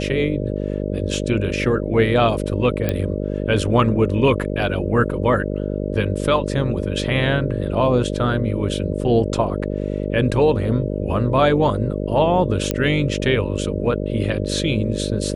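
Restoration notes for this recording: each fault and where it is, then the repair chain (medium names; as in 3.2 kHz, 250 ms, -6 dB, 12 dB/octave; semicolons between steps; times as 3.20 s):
buzz 50 Hz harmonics 12 -24 dBFS
2.89 s: pop -8 dBFS
12.71 s: pop -6 dBFS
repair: de-click; de-hum 50 Hz, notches 12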